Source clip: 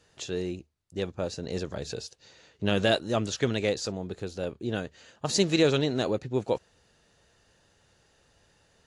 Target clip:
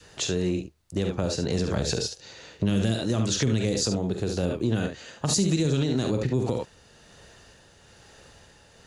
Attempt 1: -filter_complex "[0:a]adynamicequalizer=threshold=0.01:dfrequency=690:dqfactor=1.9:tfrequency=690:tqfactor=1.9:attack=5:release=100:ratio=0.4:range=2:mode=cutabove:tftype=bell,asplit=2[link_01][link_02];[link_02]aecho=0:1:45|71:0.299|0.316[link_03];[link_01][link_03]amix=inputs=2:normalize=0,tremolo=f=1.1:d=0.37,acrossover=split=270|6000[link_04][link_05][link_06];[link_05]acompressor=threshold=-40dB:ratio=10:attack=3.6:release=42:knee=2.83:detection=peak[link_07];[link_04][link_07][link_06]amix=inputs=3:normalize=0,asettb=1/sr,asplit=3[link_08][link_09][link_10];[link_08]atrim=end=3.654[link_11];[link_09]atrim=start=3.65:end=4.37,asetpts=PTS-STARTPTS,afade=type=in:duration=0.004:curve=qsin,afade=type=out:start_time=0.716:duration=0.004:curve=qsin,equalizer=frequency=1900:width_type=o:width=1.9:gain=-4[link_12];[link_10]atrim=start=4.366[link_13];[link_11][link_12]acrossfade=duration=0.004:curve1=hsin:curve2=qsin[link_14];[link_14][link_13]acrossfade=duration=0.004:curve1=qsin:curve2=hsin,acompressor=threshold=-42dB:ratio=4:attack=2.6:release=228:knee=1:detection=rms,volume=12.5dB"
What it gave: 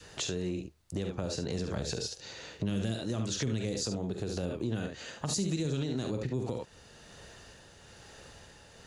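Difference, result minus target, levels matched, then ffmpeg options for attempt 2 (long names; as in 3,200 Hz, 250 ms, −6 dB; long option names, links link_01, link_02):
downward compressor: peak gain reduction +8 dB
-filter_complex "[0:a]adynamicequalizer=threshold=0.01:dfrequency=690:dqfactor=1.9:tfrequency=690:tqfactor=1.9:attack=5:release=100:ratio=0.4:range=2:mode=cutabove:tftype=bell,asplit=2[link_01][link_02];[link_02]aecho=0:1:45|71:0.299|0.316[link_03];[link_01][link_03]amix=inputs=2:normalize=0,tremolo=f=1.1:d=0.37,acrossover=split=270|6000[link_04][link_05][link_06];[link_05]acompressor=threshold=-40dB:ratio=10:attack=3.6:release=42:knee=2.83:detection=peak[link_07];[link_04][link_07][link_06]amix=inputs=3:normalize=0,asettb=1/sr,asplit=3[link_08][link_09][link_10];[link_08]atrim=end=3.654[link_11];[link_09]atrim=start=3.65:end=4.37,asetpts=PTS-STARTPTS,afade=type=in:duration=0.004:curve=qsin,afade=type=out:start_time=0.716:duration=0.004:curve=qsin,equalizer=frequency=1900:width_type=o:width=1.9:gain=-4[link_12];[link_10]atrim=start=4.366[link_13];[link_11][link_12]acrossfade=duration=0.004:curve1=hsin:curve2=qsin[link_14];[link_14][link_13]acrossfade=duration=0.004:curve1=qsin:curve2=hsin,acompressor=threshold=-31dB:ratio=4:attack=2.6:release=228:knee=1:detection=rms,volume=12.5dB"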